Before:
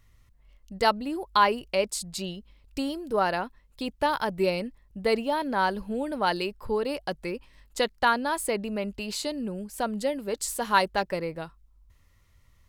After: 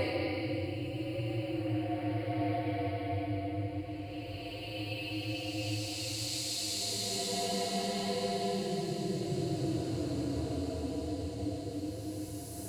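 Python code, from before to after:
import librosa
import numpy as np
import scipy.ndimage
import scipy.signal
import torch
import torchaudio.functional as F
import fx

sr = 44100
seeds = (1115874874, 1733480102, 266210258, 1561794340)

y = x * np.sin(2.0 * np.pi * 100.0 * np.arange(len(x)) / sr)
y = fx.paulstretch(y, sr, seeds[0], factor=11.0, window_s=0.25, from_s=8.56)
y = fx.echo_diffused(y, sr, ms=1157, feedback_pct=69, wet_db=-12.0)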